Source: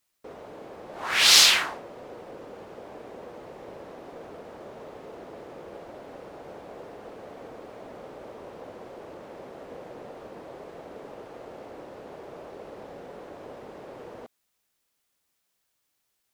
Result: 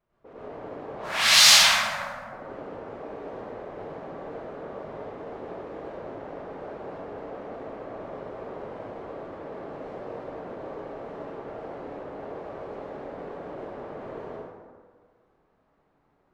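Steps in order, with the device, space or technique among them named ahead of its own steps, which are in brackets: 0.91–2.33 s: elliptic band-stop 240–560 Hz; cassette deck with a dynamic noise filter (white noise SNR 28 dB; level-controlled noise filter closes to 760 Hz, open at -31.5 dBFS); plate-style reverb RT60 1.7 s, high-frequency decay 0.45×, pre-delay 80 ms, DRR -9.5 dB; trim -6 dB

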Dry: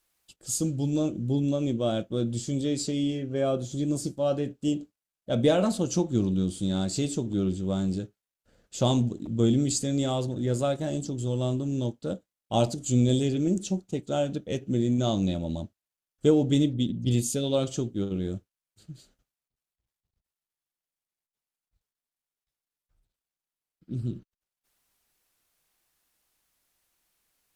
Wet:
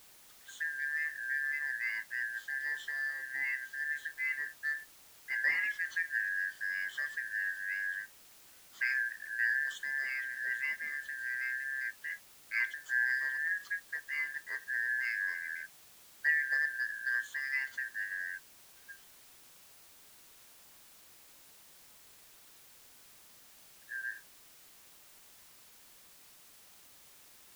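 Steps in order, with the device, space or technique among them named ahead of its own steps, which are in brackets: split-band scrambled radio (four frequency bands reordered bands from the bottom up 2143; band-pass 310–3200 Hz; white noise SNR 20 dB); trim -9 dB

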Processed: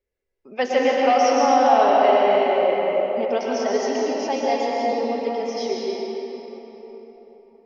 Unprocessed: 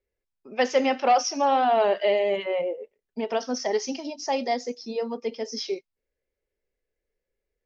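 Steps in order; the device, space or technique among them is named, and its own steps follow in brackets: swimming-pool hall (reverberation RT60 4.2 s, pre-delay 108 ms, DRR -4.5 dB; treble shelf 5.7 kHz -7 dB)

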